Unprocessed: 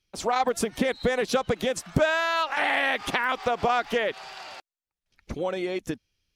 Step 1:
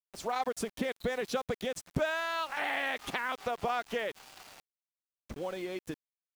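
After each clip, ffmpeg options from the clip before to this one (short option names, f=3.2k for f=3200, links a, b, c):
-af "aeval=exprs='val(0)*gte(abs(val(0)),0.0133)':c=same,volume=-8.5dB"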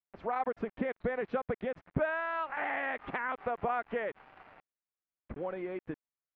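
-af "lowpass=f=2.1k:w=0.5412,lowpass=f=2.1k:w=1.3066"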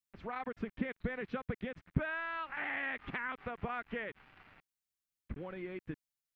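-af "equalizer=f=670:t=o:w=2.2:g=-15,volume=4dB"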